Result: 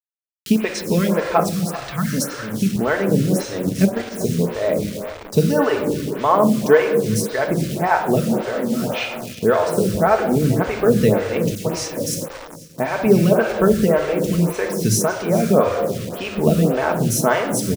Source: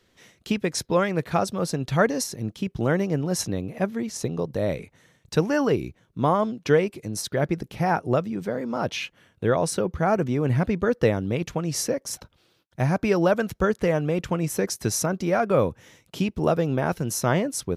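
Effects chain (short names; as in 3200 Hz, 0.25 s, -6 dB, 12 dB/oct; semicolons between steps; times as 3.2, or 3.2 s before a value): 1.4–2.13 Chebyshev band-stop 150–1400 Hz, order 2; shoebox room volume 1800 m³, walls mixed, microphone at 1.5 m; bit-crush 6-bit; 3.67–4.13 transient shaper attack +6 dB, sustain -7 dB; 11.55–11.97 dispersion lows, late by 0.1 s, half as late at 2100 Hz; feedback echo 0.395 s, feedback 34%, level -15.5 dB; photocell phaser 1.8 Hz; gain +6 dB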